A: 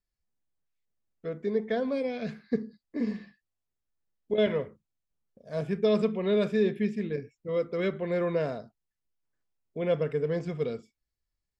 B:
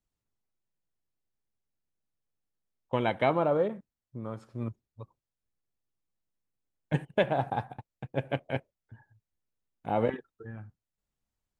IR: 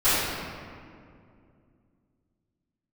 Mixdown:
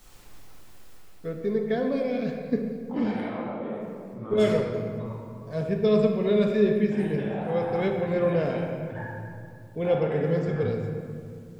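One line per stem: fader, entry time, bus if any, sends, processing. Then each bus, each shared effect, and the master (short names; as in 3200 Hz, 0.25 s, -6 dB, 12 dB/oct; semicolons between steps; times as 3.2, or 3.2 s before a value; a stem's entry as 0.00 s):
-1.0 dB, 0.00 s, send -20.5 dB, low shelf 200 Hz +7.5 dB
0.88 s -9.5 dB -> 1.59 s -21.5 dB, 0.00 s, send -10.5 dB, low shelf 260 Hz -8 dB; fast leveller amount 100%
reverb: on, RT60 2.4 s, pre-delay 3 ms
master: dry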